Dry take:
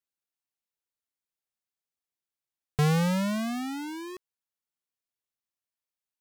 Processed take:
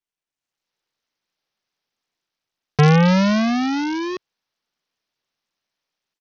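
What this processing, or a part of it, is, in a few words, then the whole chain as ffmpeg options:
Bluetooth headset: -af "highpass=110,dynaudnorm=framelen=360:gausssize=3:maxgain=14dB,aresample=16000,aresample=44100" -ar 48000 -c:a sbc -b:a 64k

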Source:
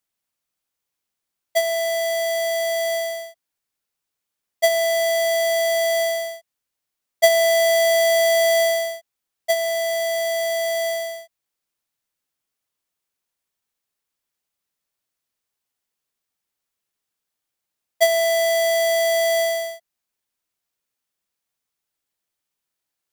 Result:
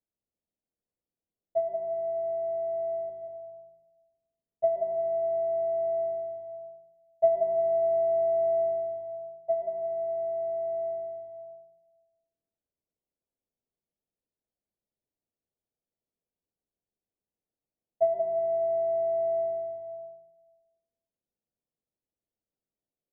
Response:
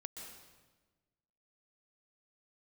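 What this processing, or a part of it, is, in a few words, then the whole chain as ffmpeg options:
next room: -filter_complex "[0:a]asettb=1/sr,asplit=3[link_01][link_02][link_03];[link_01]atrim=end=3.094[link_04];[link_02]atrim=start=3.09:end=4.64,asetpts=PTS-STARTPTS,afade=type=in:duration=0.004:curve=qsin,afade=type=out:start_time=1.546:duration=0.004:curve=qsin,aecho=1:1:0.8:0.41,atrim=end_sample=68355[link_05];[link_03]atrim=start=4.636[link_06];[link_04][link_05]acrossfade=duration=0.004:curve1=hsin:curve2=qsin[link_07];[link_07][link_06]acrossfade=duration=0.004:curve1=qsin:curve2=hsin,lowpass=frequency=650:width=0.5412,lowpass=frequency=650:width=1.3066[link_08];[1:a]atrim=start_sample=2205[link_09];[link_08][link_09]afir=irnorm=-1:irlink=0,volume=2.5dB"

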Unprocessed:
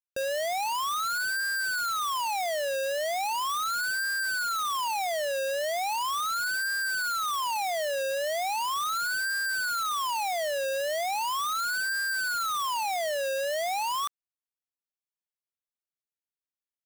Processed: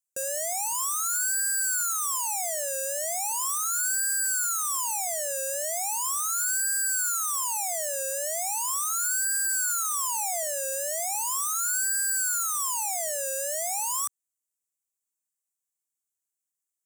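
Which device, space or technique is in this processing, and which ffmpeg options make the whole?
budget condenser microphone: -filter_complex "[0:a]highpass=100,highshelf=frequency=5400:width_type=q:width=3:gain=12.5,asettb=1/sr,asplit=3[link_01][link_02][link_03];[link_01]atrim=end=9.324[link_04];[link_02]atrim=start=9.32:end=10.43,asetpts=PTS-STARTPTS,afade=type=in:duration=0.004:curve=qsin,afade=type=out:start_time=1.106:duration=0.004:curve=qsin,lowshelf=frequency=370:width_type=q:width=1.5:gain=-8[link_05];[link_03]atrim=start=10.426[link_06];[link_04][link_05]acrossfade=duration=0.004:curve1=hsin:curve2=qsin[link_07];[link_07][link_06]acrossfade=duration=0.004:curve1=qsin:curve2=hsin,volume=-5dB"

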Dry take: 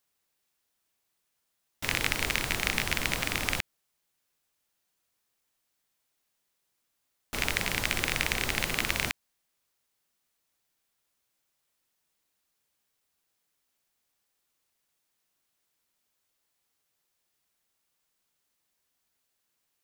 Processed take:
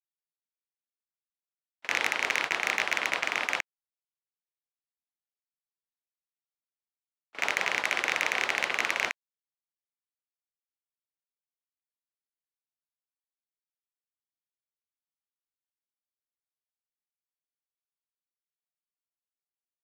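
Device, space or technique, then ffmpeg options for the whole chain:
walkie-talkie: -af "highpass=590,lowpass=2900,asoftclip=type=hard:threshold=-19dB,agate=range=-33dB:threshold=-36dB:ratio=16:detection=peak,volume=7dB"

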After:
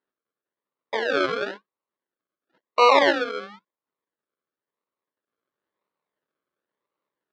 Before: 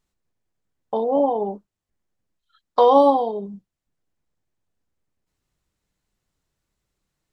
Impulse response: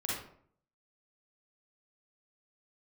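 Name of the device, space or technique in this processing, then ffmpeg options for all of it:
circuit-bent sampling toy: -af "acrusher=samples=37:mix=1:aa=0.000001:lfo=1:lforange=22.2:lforate=0.97,highpass=450,equalizer=frequency=740:width_type=q:width=4:gain=-9,equalizer=frequency=1100:width_type=q:width=4:gain=6,equalizer=frequency=1700:width_type=q:width=4:gain=3,equalizer=frequency=2500:width_type=q:width=4:gain=-5,lowpass=frequency=4100:width=0.5412,lowpass=frequency=4100:width=1.3066"

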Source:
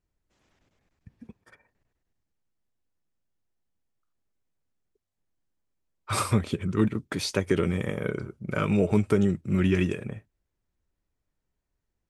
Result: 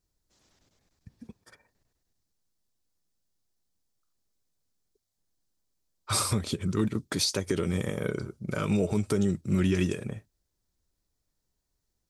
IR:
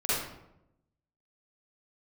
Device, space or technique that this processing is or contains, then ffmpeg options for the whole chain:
over-bright horn tweeter: -af "highshelf=frequency=3400:width_type=q:width=1.5:gain=7.5,alimiter=limit=-16dB:level=0:latency=1:release=130"

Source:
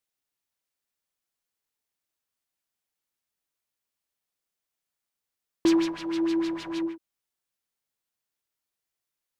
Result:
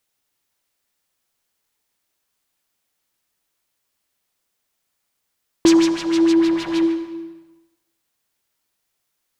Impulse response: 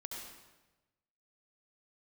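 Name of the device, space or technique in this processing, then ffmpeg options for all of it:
ducked reverb: -filter_complex "[0:a]asplit=3[link_01][link_02][link_03];[1:a]atrim=start_sample=2205[link_04];[link_02][link_04]afir=irnorm=-1:irlink=0[link_05];[link_03]apad=whole_len=414148[link_06];[link_05][link_06]sidechaincompress=threshold=-30dB:ratio=10:attack=16:release=1040,volume=2dB[link_07];[link_01][link_07]amix=inputs=2:normalize=0,asettb=1/sr,asplit=3[link_08][link_09][link_10];[link_08]atrim=end=5.664[link_11];[link_09]atrim=start=5.66:end=6.33,asetpts=PTS-STARTPTS,afade=type=in:duration=0.004:curve=qsin,afade=type=out:start_time=0.666:duration=0.004:curve=qsin,equalizer=frequency=7000:width=1.1:gain=7[link_12];[link_10]atrim=start=6.326[link_13];[link_11][link_12]acrossfade=duration=0.004:curve1=hsin:curve2=qsin[link_14];[link_14][link_13]acrossfade=duration=0.004:curve1=qsin:curve2=hsin,volume=6.5dB"

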